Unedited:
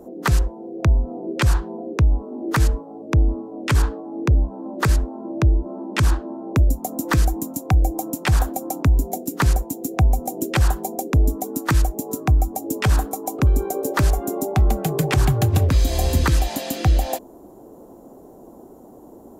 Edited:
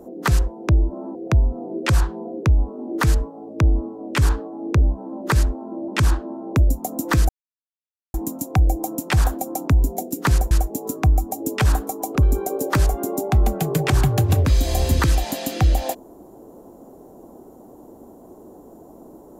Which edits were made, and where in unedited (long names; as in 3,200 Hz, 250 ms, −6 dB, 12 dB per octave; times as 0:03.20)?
0:05.41–0:05.88: move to 0:00.68
0:07.29: splice in silence 0.85 s
0:09.66–0:11.75: remove